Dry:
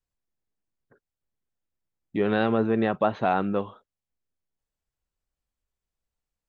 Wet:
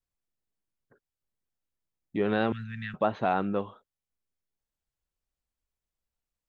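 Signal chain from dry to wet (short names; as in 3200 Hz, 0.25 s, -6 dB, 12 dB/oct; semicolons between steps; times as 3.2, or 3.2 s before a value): 2.52–2.94 elliptic band-stop 170–1700 Hz, stop band 40 dB; gain -3 dB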